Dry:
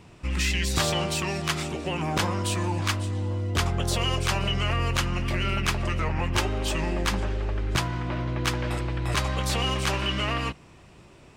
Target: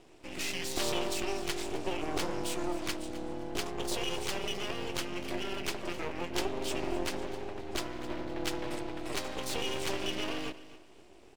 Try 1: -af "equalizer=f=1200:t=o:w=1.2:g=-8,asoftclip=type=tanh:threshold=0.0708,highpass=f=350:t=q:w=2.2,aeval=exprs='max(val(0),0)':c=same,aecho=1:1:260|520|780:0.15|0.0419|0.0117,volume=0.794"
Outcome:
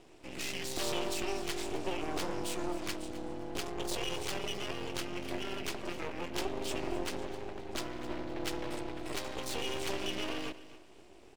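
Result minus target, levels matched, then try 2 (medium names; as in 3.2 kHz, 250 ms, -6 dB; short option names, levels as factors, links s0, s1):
saturation: distortion +16 dB
-af "equalizer=f=1200:t=o:w=1.2:g=-8,asoftclip=type=tanh:threshold=0.251,highpass=f=350:t=q:w=2.2,aeval=exprs='max(val(0),0)':c=same,aecho=1:1:260|520|780:0.15|0.0419|0.0117,volume=0.794"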